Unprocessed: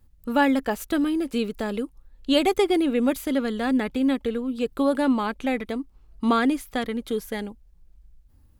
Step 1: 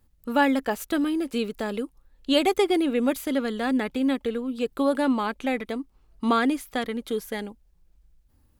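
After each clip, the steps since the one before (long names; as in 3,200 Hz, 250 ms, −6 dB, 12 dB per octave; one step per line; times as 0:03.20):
low-shelf EQ 150 Hz −7.5 dB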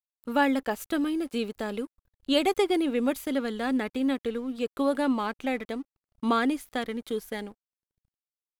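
dead-zone distortion −51.5 dBFS
level −2.5 dB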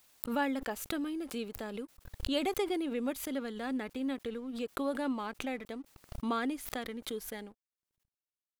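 background raised ahead of every attack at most 70 dB per second
level −8.5 dB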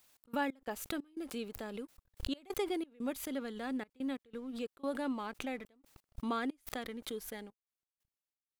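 gate pattern "x.x.xx.xxxx" 90 BPM −24 dB
level −2.5 dB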